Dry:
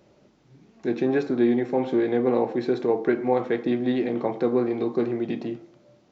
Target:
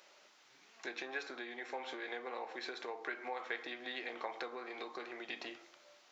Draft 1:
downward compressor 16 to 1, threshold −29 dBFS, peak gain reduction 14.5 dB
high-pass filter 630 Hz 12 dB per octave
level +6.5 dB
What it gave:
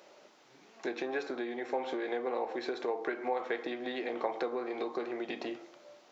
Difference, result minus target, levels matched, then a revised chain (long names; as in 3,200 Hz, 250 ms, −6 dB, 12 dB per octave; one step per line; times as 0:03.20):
500 Hz band +4.5 dB
downward compressor 16 to 1, threshold −29 dBFS, peak gain reduction 14.5 dB
high-pass filter 1,300 Hz 12 dB per octave
level +6.5 dB